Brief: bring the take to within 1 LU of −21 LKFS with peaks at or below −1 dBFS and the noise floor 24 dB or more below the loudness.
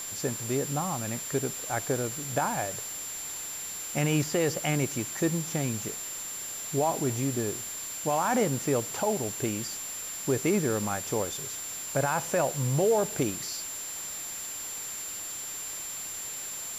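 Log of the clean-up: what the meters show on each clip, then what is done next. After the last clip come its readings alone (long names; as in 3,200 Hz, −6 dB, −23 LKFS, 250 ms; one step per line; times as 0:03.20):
interfering tone 7,300 Hz; level of the tone −36 dBFS; background noise floor −38 dBFS; target noise floor −54 dBFS; integrated loudness −30.0 LKFS; sample peak −15.5 dBFS; target loudness −21.0 LKFS
→ notch filter 7,300 Hz, Q 30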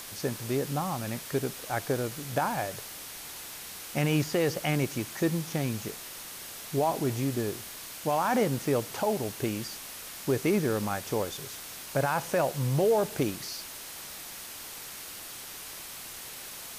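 interfering tone none found; background noise floor −43 dBFS; target noise floor −55 dBFS
→ broadband denoise 12 dB, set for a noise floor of −43 dBFS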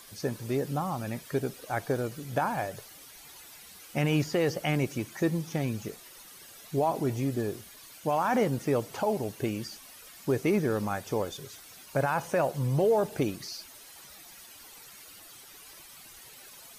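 background noise floor −50 dBFS; target noise floor −54 dBFS
→ broadband denoise 6 dB, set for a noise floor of −50 dBFS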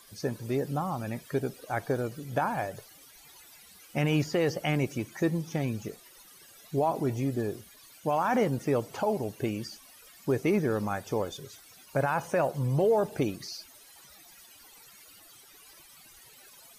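background noise floor −55 dBFS; integrated loudness −30.0 LKFS; sample peak −17.0 dBFS; target loudness −21.0 LKFS
→ level +9 dB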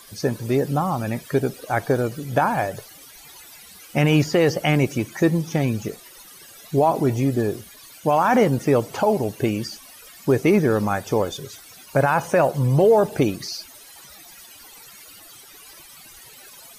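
integrated loudness −21.0 LKFS; sample peak −8.0 dBFS; background noise floor −46 dBFS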